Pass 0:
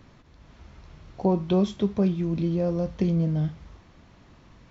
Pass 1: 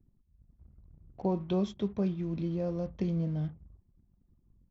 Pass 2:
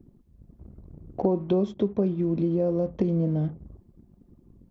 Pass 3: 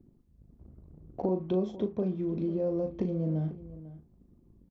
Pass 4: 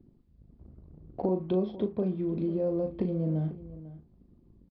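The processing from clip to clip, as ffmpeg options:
-af "anlmdn=0.0631,volume=-7.5dB"
-af "equalizer=f=390:w=0.45:g=14.5,acompressor=threshold=-33dB:ratio=2.5,volume=6.5dB"
-filter_complex "[0:a]asplit=2[a][b];[b]adelay=38,volume=-8.5dB[c];[a][c]amix=inputs=2:normalize=0,asplit=2[d][e];[e]adelay=495.6,volume=-16dB,highshelf=f=4k:g=-11.2[f];[d][f]amix=inputs=2:normalize=0,volume=-6.5dB"
-af "aresample=11025,aresample=44100,volume=1dB"

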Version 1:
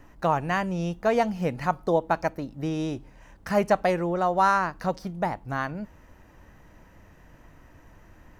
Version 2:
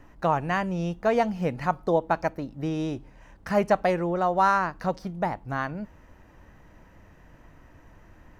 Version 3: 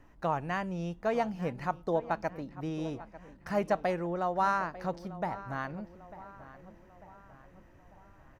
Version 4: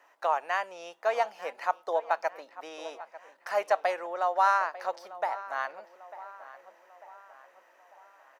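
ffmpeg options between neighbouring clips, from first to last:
-af "highshelf=f=5.8k:g=-6"
-filter_complex "[0:a]asplit=2[a][b];[b]adelay=896,lowpass=f=2.8k:p=1,volume=-16dB,asplit=2[c][d];[d]adelay=896,lowpass=f=2.8k:p=1,volume=0.52,asplit=2[e][f];[f]adelay=896,lowpass=f=2.8k:p=1,volume=0.52,asplit=2[g][h];[h]adelay=896,lowpass=f=2.8k:p=1,volume=0.52,asplit=2[i][j];[j]adelay=896,lowpass=f=2.8k:p=1,volume=0.52[k];[a][c][e][g][i][k]amix=inputs=6:normalize=0,volume=-7dB"
-af "highpass=f=570:w=0.5412,highpass=f=570:w=1.3066,volume=5dB"

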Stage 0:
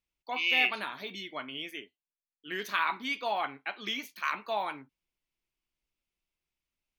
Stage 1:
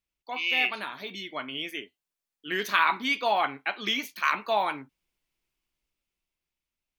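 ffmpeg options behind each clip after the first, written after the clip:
-af "dynaudnorm=f=250:g=11:m=6.5dB"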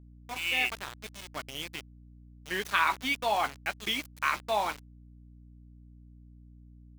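-af "aeval=exprs='val(0)*gte(abs(val(0)),0.0251)':c=same,aeval=exprs='val(0)+0.00398*(sin(2*PI*60*n/s)+sin(2*PI*2*60*n/s)/2+sin(2*PI*3*60*n/s)/3+sin(2*PI*4*60*n/s)/4+sin(2*PI*5*60*n/s)/5)':c=same,volume=-3dB"

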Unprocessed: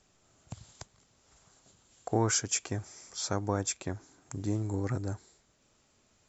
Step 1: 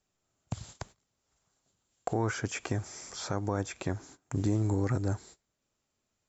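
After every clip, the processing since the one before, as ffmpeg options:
-filter_complex "[0:a]acrossover=split=2600[a][b];[b]acompressor=threshold=-48dB:ratio=4:attack=1:release=60[c];[a][c]amix=inputs=2:normalize=0,agate=range=-21dB:threshold=-56dB:ratio=16:detection=peak,alimiter=level_in=1.5dB:limit=-24dB:level=0:latency=1:release=241,volume=-1.5dB,volume=7.5dB"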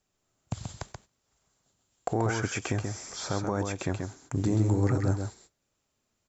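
-af "aecho=1:1:132:0.562,volume=2dB"

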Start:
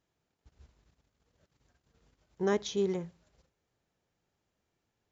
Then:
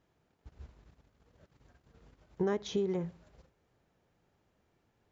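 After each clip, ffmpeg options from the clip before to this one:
-af "highshelf=f=3.4k:g=-11.5,acompressor=threshold=-37dB:ratio=8,volume=8.5dB"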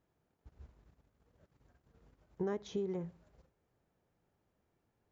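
-af "equalizer=f=3.7k:w=0.59:g=-4.5,volume=-5dB"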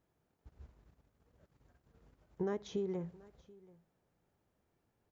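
-af "aecho=1:1:732:0.0708"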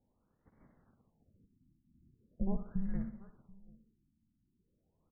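-af "highpass=f=160:t=q:w=0.5412,highpass=f=160:t=q:w=1.307,lowpass=f=3.4k:t=q:w=0.5176,lowpass=f=3.4k:t=q:w=0.7071,lowpass=f=3.4k:t=q:w=1.932,afreqshift=-390,aecho=1:1:62|124|186|248|310:0.282|0.135|0.0649|0.0312|0.015,afftfilt=real='re*lt(b*sr/1024,310*pow(2300/310,0.5+0.5*sin(2*PI*0.41*pts/sr)))':imag='im*lt(b*sr/1024,310*pow(2300/310,0.5+0.5*sin(2*PI*0.41*pts/sr)))':win_size=1024:overlap=0.75,volume=4.5dB"

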